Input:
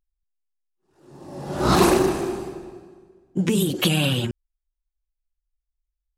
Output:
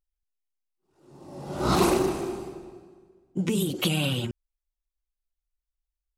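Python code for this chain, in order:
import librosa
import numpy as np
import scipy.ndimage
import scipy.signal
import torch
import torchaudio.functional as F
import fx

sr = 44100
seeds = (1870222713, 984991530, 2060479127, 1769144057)

y = fx.notch(x, sr, hz=1700.0, q=8.5)
y = y * 10.0 ** (-5.0 / 20.0)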